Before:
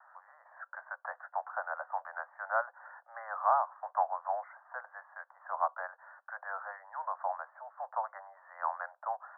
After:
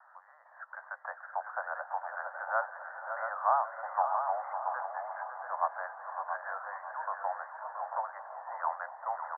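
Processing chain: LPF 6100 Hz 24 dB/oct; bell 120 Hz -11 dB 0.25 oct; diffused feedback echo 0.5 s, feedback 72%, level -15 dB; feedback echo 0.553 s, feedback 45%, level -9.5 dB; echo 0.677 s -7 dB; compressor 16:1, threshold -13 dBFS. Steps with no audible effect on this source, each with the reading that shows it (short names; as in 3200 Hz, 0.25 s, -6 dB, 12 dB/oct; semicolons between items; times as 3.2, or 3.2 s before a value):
LPF 6100 Hz: input band ends at 1900 Hz; bell 120 Hz: input band starts at 450 Hz; compressor, threshold -13 dBFS: input peak -15.5 dBFS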